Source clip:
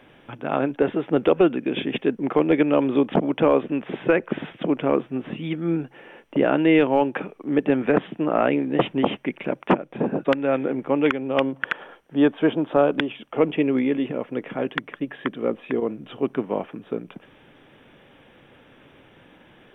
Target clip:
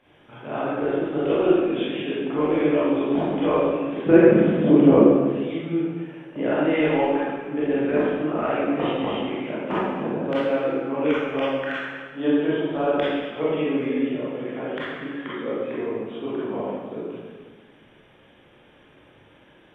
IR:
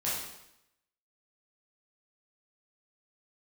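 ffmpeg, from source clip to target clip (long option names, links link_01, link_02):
-filter_complex "[0:a]asettb=1/sr,asplit=3[link_01][link_02][link_03];[link_01]atrim=end=4.064[link_04];[link_02]atrim=start=4.06:end=5.01,asetpts=PTS-STARTPTS,afade=type=in:duration=0.004:curve=qsin,afade=type=out:start_time=0.946:duration=0.004:curve=qsin,equalizer=frequency=180:width=0.34:gain=14[link_05];[link_03]atrim=start=5.006[link_06];[link_04][link_05]acrossfade=duration=0.004:curve1=hsin:curve2=qsin[link_07];[link_07][link_06]acrossfade=duration=0.004:curve1=qsin:curve2=hsin[link_08];[1:a]atrim=start_sample=2205,asetrate=25137,aresample=44100[link_09];[link_08][link_09]afir=irnorm=-1:irlink=0,volume=-12.5dB"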